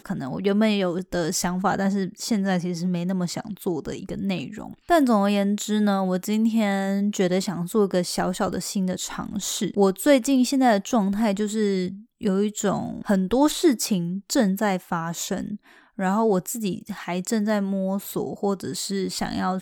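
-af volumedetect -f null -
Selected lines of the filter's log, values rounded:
mean_volume: -23.5 dB
max_volume: -4.5 dB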